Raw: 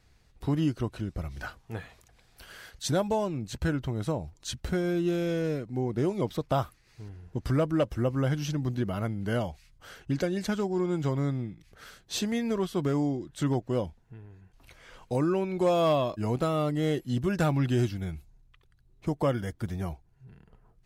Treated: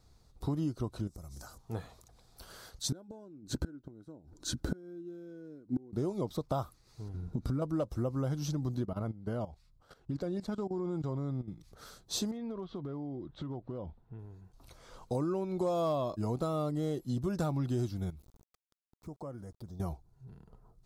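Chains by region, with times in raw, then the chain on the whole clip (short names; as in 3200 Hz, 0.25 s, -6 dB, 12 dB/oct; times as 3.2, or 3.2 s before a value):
1.07–1.58 resonant high shelf 4800 Hz +12 dB, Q 1.5 + compressor 8:1, threshold -43 dBFS
2.92–5.93 small resonant body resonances 290/1500 Hz, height 15 dB, ringing for 20 ms + flipped gate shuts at -17 dBFS, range -29 dB
7.14–7.62 low shelf 210 Hz +6 dB + small resonant body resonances 220/1400/2300/3800 Hz, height 10 dB, ringing for 20 ms + compressor 3:1, threshold -27 dBFS
8.85–11.48 high shelf 5100 Hz -11 dB + notch 6200 Hz, Q 14 + level quantiser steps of 16 dB
12.31–14.19 LPF 3400 Hz 24 dB/oct + compressor, threshold -36 dBFS + hard clip -31.5 dBFS
18.1–19.8 envelope phaser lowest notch 580 Hz, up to 3800 Hz, full sweep at -26.5 dBFS + sample gate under -53.5 dBFS + compressor 2:1, threshold -53 dBFS
whole clip: band shelf 2200 Hz -11 dB 1.2 oct; compressor 2.5:1, threshold -32 dBFS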